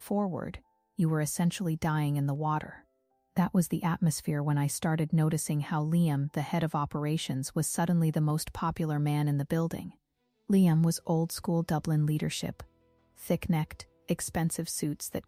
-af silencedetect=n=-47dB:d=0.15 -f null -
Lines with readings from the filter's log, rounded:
silence_start: 0.58
silence_end: 0.99 | silence_duration: 0.40
silence_start: 2.80
silence_end: 3.36 | silence_duration: 0.57
silence_start: 9.90
silence_end: 10.50 | silence_duration: 0.59
silence_start: 12.64
silence_end: 13.18 | silence_duration: 0.54
silence_start: 13.84
silence_end: 14.09 | silence_duration: 0.25